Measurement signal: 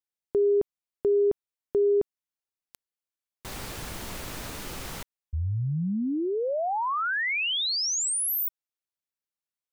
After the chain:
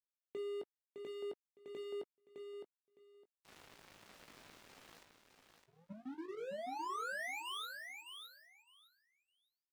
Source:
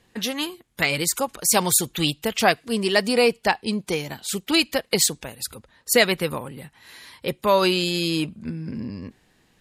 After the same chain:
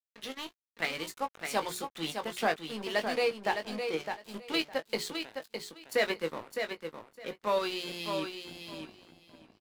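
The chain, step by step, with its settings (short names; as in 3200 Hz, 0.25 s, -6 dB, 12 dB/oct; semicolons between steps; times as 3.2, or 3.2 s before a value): HPF 54 Hz 12 dB/oct; notches 60/120/180/240/300/360/420 Hz; harmonic-percussive split harmonic -14 dB; dynamic EQ 2600 Hz, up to -4 dB, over -39 dBFS, Q 4.7; harmonic-percussive split percussive -12 dB; three-band isolator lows -14 dB, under 180 Hz, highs -14 dB, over 3900 Hz; in parallel at 0 dB: level quantiser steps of 11 dB; on the sum: sample leveller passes 1; crossover distortion -39 dBFS; doubler 19 ms -8.5 dB; feedback echo 0.61 s, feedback 17%, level -6.5 dB; gain -4.5 dB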